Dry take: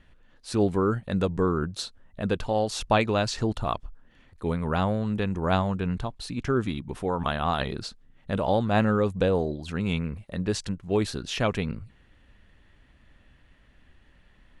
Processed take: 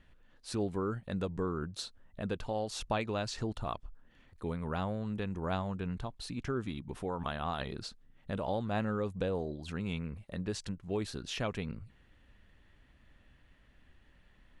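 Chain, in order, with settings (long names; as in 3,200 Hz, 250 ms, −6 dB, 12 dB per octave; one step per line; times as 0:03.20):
downward compressor 1.5 to 1, threshold −34 dBFS, peak gain reduction 6.5 dB
level −5 dB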